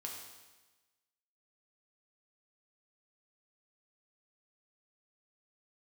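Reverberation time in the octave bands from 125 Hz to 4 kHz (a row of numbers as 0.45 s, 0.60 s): 1.2 s, 1.2 s, 1.2 s, 1.2 s, 1.2 s, 1.2 s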